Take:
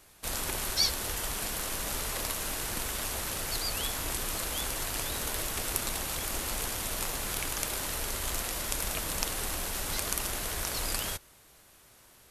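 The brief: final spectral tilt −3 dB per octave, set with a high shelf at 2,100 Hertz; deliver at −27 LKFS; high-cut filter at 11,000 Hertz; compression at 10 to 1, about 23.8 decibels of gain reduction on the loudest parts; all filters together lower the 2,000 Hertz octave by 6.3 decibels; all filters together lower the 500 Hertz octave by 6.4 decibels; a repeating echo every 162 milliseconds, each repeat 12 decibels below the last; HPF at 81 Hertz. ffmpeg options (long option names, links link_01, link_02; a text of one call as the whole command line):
ffmpeg -i in.wav -af "highpass=81,lowpass=11000,equalizer=frequency=500:width_type=o:gain=-7.5,equalizer=frequency=2000:width_type=o:gain=-3,highshelf=frequency=2100:gain=-8,acompressor=threshold=-54dB:ratio=10,aecho=1:1:162|324|486:0.251|0.0628|0.0157,volume=28.5dB" out.wav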